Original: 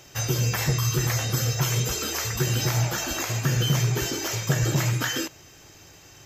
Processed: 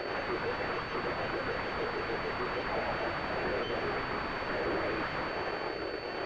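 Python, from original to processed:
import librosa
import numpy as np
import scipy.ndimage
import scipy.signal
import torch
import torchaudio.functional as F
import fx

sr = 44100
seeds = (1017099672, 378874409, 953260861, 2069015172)

p1 = scipy.signal.sosfilt(scipy.signal.cheby2(4, 40, 200.0, 'highpass', fs=sr, output='sos'), x)
p2 = fx.tilt_eq(p1, sr, slope=-2.0)
p3 = fx.over_compress(p2, sr, threshold_db=-40.0, ratio=-1.0)
p4 = p2 + (p3 * 10.0 ** (1.0 / 20.0))
p5 = fx.fuzz(p4, sr, gain_db=37.0, gate_db=-45.0)
p6 = fx.rotary_switch(p5, sr, hz=6.7, then_hz=0.85, switch_at_s=2.44)
p7 = 10.0 ** (-20.0 / 20.0) * (np.abs((p6 / 10.0 ** (-20.0 / 20.0) + 3.0) % 4.0 - 2.0) - 1.0)
p8 = fx.pwm(p7, sr, carrier_hz=4500.0)
y = p8 * 10.0 ** (-5.0 / 20.0)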